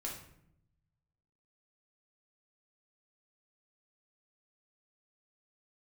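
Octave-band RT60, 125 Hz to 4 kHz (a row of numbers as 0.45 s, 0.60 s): 1.7 s, 1.1 s, 0.80 s, 0.65 s, 0.65 s, 0.50 s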